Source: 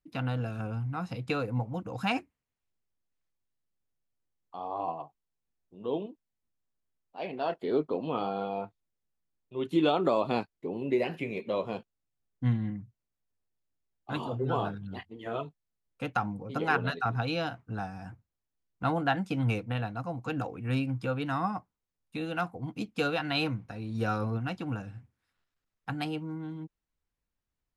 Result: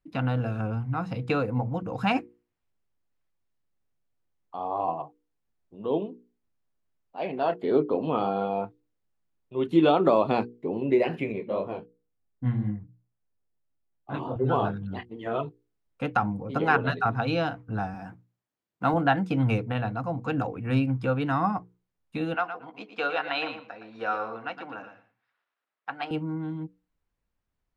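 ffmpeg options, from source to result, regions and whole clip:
ffmpeg -i in.wav -filter_complex "[0:a]asettb=1/sr,asplit=3[link_01][link_02][link_03];[link_01]atrim=end=11.324[link_04];[link_02]atrim=start=11.32:end=14.36,asetpts=PTS-STARTPTS,afade=type=in:duration=0.004:curve=qsin,afade=type=out:start_time=3.036:duration=0.004:curve=qsin,highshelf=frequency=3200:gain=-10.5,flanger=delay=19.5:depth=4.9:speed=2.9[link_05];[link_03]atrim=start=14.356[link_06];[link_04][link_05]acrossfade=duration=0.004:curve1=hsin:curve2=qsin[link_07];[link_07][link_06]acrossfade=duration=0.004:curve1=qsin:curve2=hsin,asettb=1/sr,asplit=3[link_08][link_09][link_10];[link_08]atrim=end=17.944[link_11];[link_09]atrim=start=17.94:end=18.94,asetpts=PTS-STARTPTS,afade=type=in:duration=0.004:curve=qsin,afade=type=out:start_time=0.996:duration=0.004:curve=qsin,highpass=160,acrusher=bits=9:mode=log:mix=0:aa=0.000001[link_12];[link_10]atrim=start=18.936[link_13];[link_11][link_12]acrossfade=duration=0.004:curve1=hsin:curve2=qsin[link_14];[link_14][link_13]acrossfade=duration=0.004:curve1=qsin:curve2=hsin,asettb=1/sr,asplit=3[link_15][link_16][link_17];[link_15]atrim=end=22.344[link_18];[link_16]atrim=start=22.34:end=26.11,asetpts=PTS-STARTPTS,afade=type=in:duration=0.004:curve=qsin,afade=type=out:start_time=3.766:duration=0.004:curve=qsin,highpass=600,lowpass=3800,aecho=1:1:115|230:0.335|0.0502,atrim=end_sample=166257[link_19];[link_17]atrim=start=26.106[link_20];[link_18][link_19]acrossfade=duration=0.004:curve1=hsin:curve2=qsin[link_21];[link_21][link_20]acrossfade=duration=0.004:curve1=qsin:curve2=hsin,highshelf=frequency=3800:gain=-12,bandreject=frequency=60:width_type=h:width=6,bandreject=frequency=120:width_type=h:width=6,bandreject=frequency=180:width_type=h:width=6,bandreject=frequency=240:width_type=h:width=6,bandreject=frequency=300:width_type=h:width=6,bandreject=frequency=360:width_type=h:width=6,bandreject=frequency=420:width_type=h:width=6,bandreject=frequency=480:width_type=h:width=6,volume=6dB" out.wav

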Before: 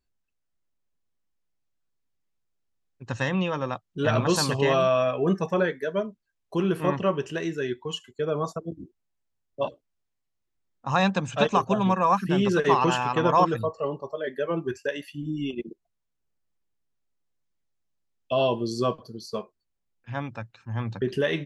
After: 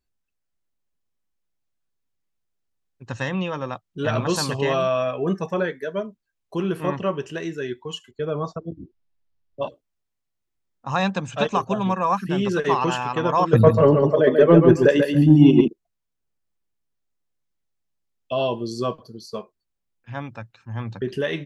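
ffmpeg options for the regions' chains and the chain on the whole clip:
ffmpeg -i in.wav -filter_complex "[0:a]asettb=1/sr,asplit=3[link_01][link_02][link_03];[link_01]atrim=end=8.114[link_04];[link_02]atrim=start=8.11:end=9.63,asetpts=PTS-STARTPTS,afade=type=in:duration=0.004:curve=qsin,afade=type=out:start_time=1.516:duration=0.004:curve=qsin,lowpass=frequency=5300:width=0.5412,lowpass=frequency=5300:width=1.3066,lowshelf=frequency=110:gain=9[link_05];[link_03]atrim=start=9.626[link_06];[link_04][link_05]acrossfade=duration=0.004:curve1=hsin:curve2=qsin[link_07];[link_07][link_06]acrossfade=duration=0.004:curve1=qsin:curve2=hsin,asettb=1/sr,asplit=3[link_08][link_09][link_10];[link_08]atrim=end=13.534[link_11];[link_09]atrim=start=13.53:end=15.68,asetpts=PTS-STARTPTS,afade=type=in:duration=0.004:curve=qsin,afade=type=out:start_time=2.146:duration=0.004:curve=qsin,equalizer=frequency=180:width=0.32:gain=12,acontrast=82,aecho=1:1:139|278|417:0.531|0.117|0.0257,atrim=end_sample=94815[link_12];[link_10]atrim=start=15.676[link_13];[link_11][link_12]acrossfade=duration=0.004:curve1=hsin:curve2=qsin[link_14];[link_14][link_13]acrossfade=duration=0.004:curve1=qsin:curve2=hsin" out.wav

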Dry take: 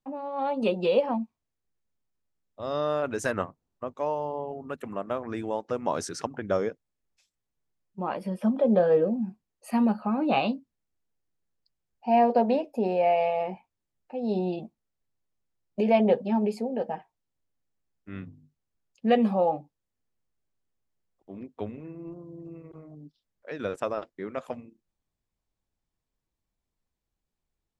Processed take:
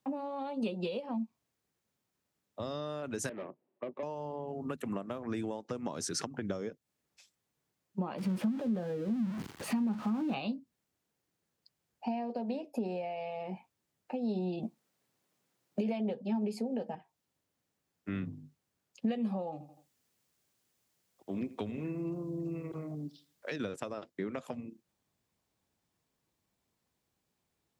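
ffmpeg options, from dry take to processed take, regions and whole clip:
ffmpeg -i in.wav -filter_complex "[0:a]asettb=1/sr,asplit=3[link_01][link_02][link_03];[link_01]atrim=end=3.294[link_04];[link_02]atrim=start=3.29:end=4.03,asetpts=PTS-STARTPTS,afade=type=in:duration=0.004:curve=qsin,afade=type=out:start_time=0.736:duration=0.004:curve=qsin,aeval=exprs='(tanh(70.8*val(0)+0.75)-tanh(0.75))/70.8':channel_layout=same,highpass=frequency=160:width=0.5412,highpass=frequency=160:width=1.3066,equalizer=frequency=170:width_type=q:width=4:gain=-4,equalizer=frequency=370:width_type=q:width=4:gain=10,equalizer=frequency=580:width_type=q:width=4:gain=9,equalizer=frequency=1400:width_type=q:width=4:gain=-5,lowpass=frequency=2600:width=0.5412,lowpass=frequency=2600:width=1.3066[link_05];[link_03]atrim=start=4.026[link_06];[link_04][link_05]acrossfade=duration=0.004:curve1=hsin:curve2=qsin[link_07];[link_07][link_06]acrossfade=duration=0.004:curve1=qsin:curve2=hsin,asettb=1/sr,asplit=3[link_08][link_09][link_10];[link_08]atrim=end=8.184[link_11];[link_09]atrim=start=8.18:end=10.34,asetpts=PTS-STARTPTS,afade=type=in:duration=0.004:curve=qsin,afade=type=out:start_time=2.156:duration=0.004:curve=qsin,aeval=exprs='val(0)+0.5*0.0224*sgn(val(0))':channel_layout=same,lowpass=frequency=1600:poles=1,equalizer=frequency=580:width_type=o:width=0.68:gain=-8.5[link_12];[link_10]atrim=start=10.336[link_13];[link_11][link_12]acrossfade=duration=0.004:curve1=hsin:curve2=qsin[link_14];[link_14][link_13]acrossfade=duration=0.004:curve1=qsin:curve2=hsin,asettb=1/sr,asplit=3[link_15][link_16][link_17];[link_15]atrim=end=14.634[link_18];[link_16]atrim=start=14.63:end=16.95,asetpts=PTS-STARTPTS,afade=type=in:duration=0.004:curve=qsin,afade=type=out:start_time=2.316:duration=0.004:curve=qsin,highpass=140,acontrast=29[link_19];[link_17]atrim=start=16.946[link_20];[link_18][link_19]acrossfade=duration=0.004:curve1=hsin:curve2=qsin[link_21];[link_21][link_20]acrossfade=duration=0.004:curve1=qsin:curve2=hsin,asettb=1/sr,asplit=3[link_22][link_23][link_24];[link_22]atrim=end=19.524[link_25];[link_23]atrim=start=19.52:end=23.56,asetpts=PTS-STARTPTS,afade=type=in:duration=0.004:curve=qsin,afade=type=out:start_time=4.036:duration=0.004:curve=qsin,highshelf=frequency=2300:gain=9,aecho=1:1:83|166|249:0.119|0.0357|0.0107,atrim=end_sample=178164[link_26];[link_24]atrim=start=23.556[link_27];[link_25][link_26]acrossfade=duration=0.004:curve1=hsin:curve2=qsin[link_28];[link_28][link_27]acrossfade=duration=0.004:curve1=qsin:curve2=hsin,acompressor=threshold=-36dB:ratio=6,highpass=110,acrossover=split=290|3000[link_29][link_30][link_31];[link_30]acompressor=threshold=-53dB:ratio=2[link_32];[link_29][link_32][link_31]amix=inputs=3:normalize=0,volume=7.5dB" out.wav

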